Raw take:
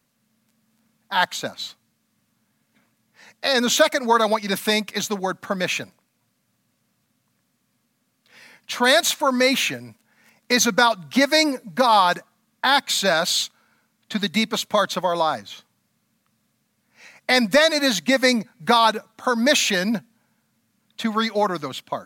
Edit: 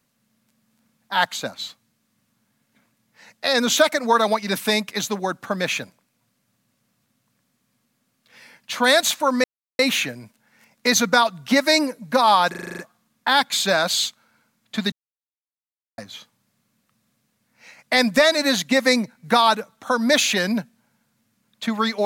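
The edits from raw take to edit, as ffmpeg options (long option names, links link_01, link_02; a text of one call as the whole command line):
ffmpeg -i in.wav -filter_complex "[0:a]asplit=11[link_01][link_02][link_03][link_04][link_05][link_06][link_07][link_08][link_09][link_10][link_11];[link_01]atrim=end=9.44,asetpts=PTS-STARTPTS,afade=type=out:start_time=9.436:duration=0.004:curve=hsin,apad=pad_dur=0.35[link_12];[link_02]atrim=start=9.44:end=12.192,asetpts=PTS-STARTPTS,afade=type=in:duration=0.004:curve=hsin[link_13];[link_03]atrim=start=12.148:end=12.192[link_14];[link_04]atrim=start=12.148:end=12.192[link_15];[link_05]atrim=start=12.148:end=12.192[link_16];[link_06]atrim=start=12.148:end=12.192[link_17];[link_07]atrim=start=12.148:end=12.192[link_18];[link_08]atrim=start=12.148:end=12.192[link_19];[link_09]atrim=start=12.148:end=14.29,asetpts=PTS-STARTPTS,afade=type=out:start_time=2.138:duration=0.004:curve=hsin[link_20];[link_10]atrim=start=14.29:end=15.35,asetpts=PTS-STARTPTS,volume=0[link_21];[link_11]atrim=start=15.35,asetpts=PTS-STARTPTS,afade=type=in:duration=0.004:curve=hsin[link_22];[link_12][link_13]concat=n=2:v=0:a=1[link_23];[link_23][link_14]acrossfade=duration=0.004:curve1=hsin:curve2=hsin[link_24];[link_24][link_15]acrossfade=duration=0.004:curve1=hsin:curve2=hsin[link_25];[link_25][link_16]acrossfade=duration=0.004:curve1=hsin:curve2=hsin[link_26];[link_26][link_17]acrossfade=duration=0.004:curve1=hsin:curve2=hsin[link_27];[link_27][link_18]acrossfade=duration=0.004:curve1=hsin:curve2=hsin[link_28];[link_28][link_19]acrossfade=duration=0.004:curve1=hsin:curve2=hsin[link_29];[link_20][link_21][link_22]concat=n=3:v=0:a=1[link_30];[link_29][link_30]acrossfade=duration=0.004:curve1=hsin:curve2=hsin" out.wav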